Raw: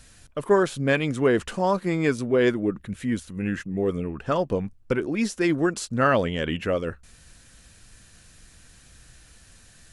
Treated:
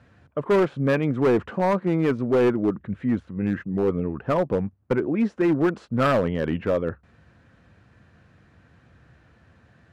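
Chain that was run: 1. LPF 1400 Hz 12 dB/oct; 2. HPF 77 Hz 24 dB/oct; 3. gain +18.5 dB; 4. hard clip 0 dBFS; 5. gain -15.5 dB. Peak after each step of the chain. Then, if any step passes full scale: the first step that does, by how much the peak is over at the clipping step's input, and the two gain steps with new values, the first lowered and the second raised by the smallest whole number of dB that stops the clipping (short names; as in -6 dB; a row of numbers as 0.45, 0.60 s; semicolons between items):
-9.0, -9.0, +9.5, 0.0, -15.5 dBFS; step 3, 9.5 dB; step 3 +8.5 dB, step 5 -5.5 dB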